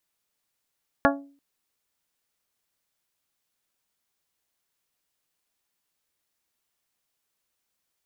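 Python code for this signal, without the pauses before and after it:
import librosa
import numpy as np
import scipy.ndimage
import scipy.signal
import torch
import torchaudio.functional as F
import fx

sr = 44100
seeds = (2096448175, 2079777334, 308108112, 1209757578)

y = fx.strike_glass(sr, length_s=0.34, level_db=-19.0, body='bell', hz=280.0, decay_s=0.45, tilt_db=0, modes=7)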